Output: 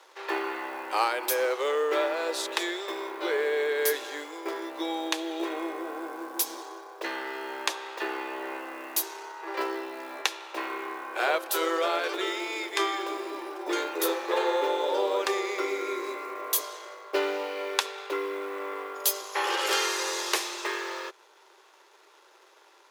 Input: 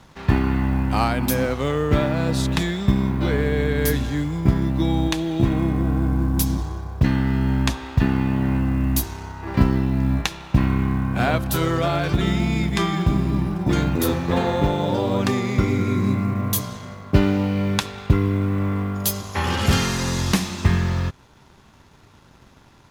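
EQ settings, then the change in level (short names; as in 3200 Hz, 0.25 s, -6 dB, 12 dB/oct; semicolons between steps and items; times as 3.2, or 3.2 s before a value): steep high-pass 350 Hz 72 dB/oct; notch 700 Hz, Q 12; -2.0 dB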